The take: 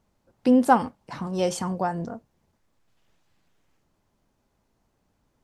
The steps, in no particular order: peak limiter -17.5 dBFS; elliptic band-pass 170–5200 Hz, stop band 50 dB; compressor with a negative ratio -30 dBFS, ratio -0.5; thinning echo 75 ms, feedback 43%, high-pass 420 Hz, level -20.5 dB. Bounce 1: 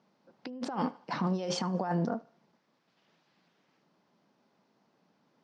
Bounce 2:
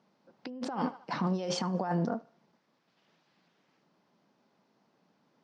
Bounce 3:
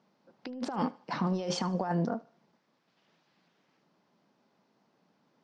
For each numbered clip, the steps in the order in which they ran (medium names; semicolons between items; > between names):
peak limiter > thinning echo > compressor with a negative ratio > elliptic band-pass; thinning echo > peak limiter > compressor with a negative ratio > elliptic band-pass; elliptic band-pass > peak limiter > compressor with a negative ratio > thinning echo